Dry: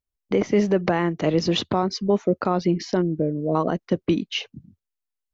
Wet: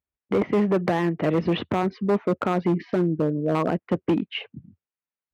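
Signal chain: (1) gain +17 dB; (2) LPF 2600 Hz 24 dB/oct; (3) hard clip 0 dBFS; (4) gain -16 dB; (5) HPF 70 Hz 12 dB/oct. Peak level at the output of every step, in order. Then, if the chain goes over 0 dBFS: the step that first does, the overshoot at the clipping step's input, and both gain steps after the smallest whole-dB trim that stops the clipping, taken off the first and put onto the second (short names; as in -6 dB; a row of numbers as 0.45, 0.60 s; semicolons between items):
+7.5, +7.5, 0.0, -16.0, -12.0 dBFS; step 1, 7.5 dB; step 1 +9 dB, step 4 -8 dB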